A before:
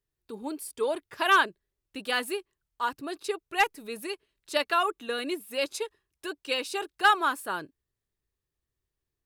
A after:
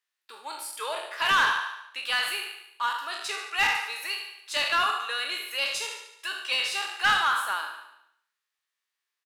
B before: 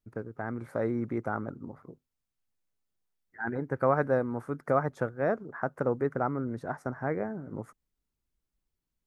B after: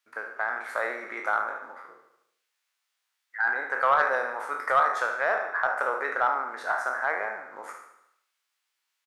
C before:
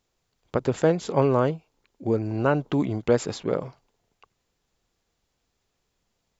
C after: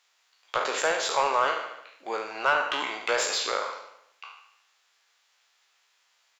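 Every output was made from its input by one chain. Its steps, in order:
spectral trails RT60 0.59 s; HPF 1300 Hz 12 dB/oct; dynamic EQ 1800 Hz, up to -4 dB, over -41 dBFS, Q 0.95; on a send: feedback echo 73 ms, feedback 56%, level -11.5 dB; on the sum: short-mantissa float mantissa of 6-bit; overdrive pedal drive 16 dB, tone 3000 Hz, clips at -12 dBFS; match loudness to -27 LUFS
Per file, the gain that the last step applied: -1.0, +5.5, +3.0 dB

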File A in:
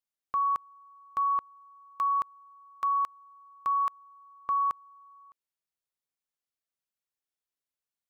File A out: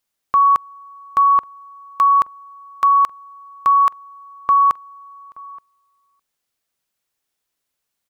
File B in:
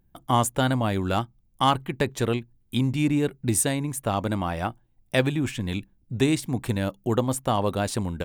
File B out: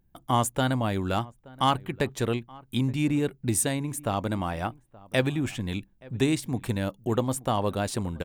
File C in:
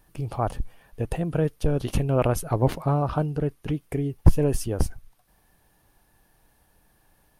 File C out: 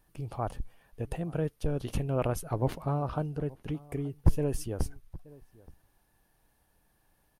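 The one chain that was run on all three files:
outdoor echo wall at 150 m, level -22 dB; normalise peaks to -9 dBFS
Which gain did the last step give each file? +14.0, -2.5, -7.5 dB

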